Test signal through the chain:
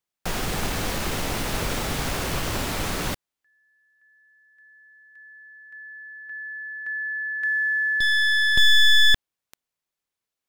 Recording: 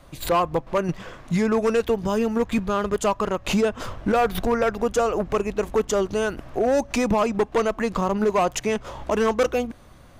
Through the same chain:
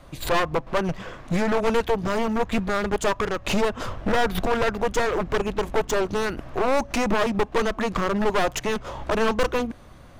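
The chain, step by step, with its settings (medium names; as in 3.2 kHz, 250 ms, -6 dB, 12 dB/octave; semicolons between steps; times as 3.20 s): one-sided wavefolder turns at -22 dBFS; treble shelf 5.8 kHz -5 dB; trim +2 dB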